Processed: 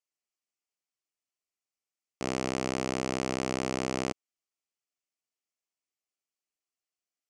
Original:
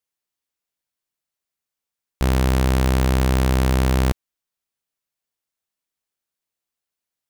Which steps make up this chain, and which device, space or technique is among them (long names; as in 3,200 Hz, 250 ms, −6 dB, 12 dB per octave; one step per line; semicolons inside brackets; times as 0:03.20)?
full-range speaker at full volume (highs frequency-modulated by the lows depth 0.82 ms; loudspeaker in its box 290–8,100 Hz, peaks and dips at 510 Hz −5 dB, 930 Hz −8 dB, 1,600 Hz −10 dB, 3,700 Hz −10 dB)
level −3.5 dB